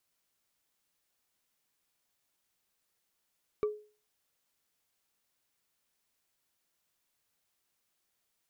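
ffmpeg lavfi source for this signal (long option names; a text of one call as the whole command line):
ffmpeg -f lavfi -i "aevalsrc='0.0631*pow(10,-3*t/0.38)*sin(2*PI*422*t)+0.0178*pow(10,-3*t/0.113)*sin(2*PI*1163.5*t)+0.00501*pow(10,-3*t/0.05)*sin(2*PI*2280.5*t)+0.00141*pow(10,-3*t/0.027)*sin(2*PI*3769.7*t)+0.000398*pow(10,-3*t/0.017)*sin(2*PI*5629.5*t)':duration=0.45:sample_rate=44100" out.wav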